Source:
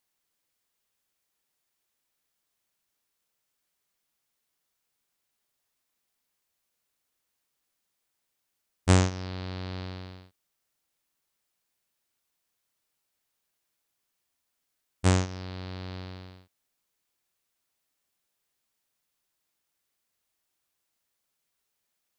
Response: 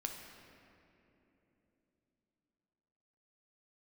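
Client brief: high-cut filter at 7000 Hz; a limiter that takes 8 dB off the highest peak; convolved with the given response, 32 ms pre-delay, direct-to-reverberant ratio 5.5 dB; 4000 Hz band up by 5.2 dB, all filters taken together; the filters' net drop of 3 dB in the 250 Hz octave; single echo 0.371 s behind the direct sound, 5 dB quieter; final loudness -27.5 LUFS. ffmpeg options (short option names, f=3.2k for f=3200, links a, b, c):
-filter_complex "[0:a]lowpass=7k,equalizer=f=250:t=o:g=-4.5,equalizer=f=4k:t=o:g=7,alimiter=limit=-12dB:level=0:latency=1,aecho=1:1:371:0.562,asplit=2[a][b];[1:a]atrim=start_sample=2205,adelay=32[c];[b][c]afir=irnorm=-1:irlink=0,volume=-5dB[d];[a][d]amix=inputs=2:normalize=0,volume=4dB"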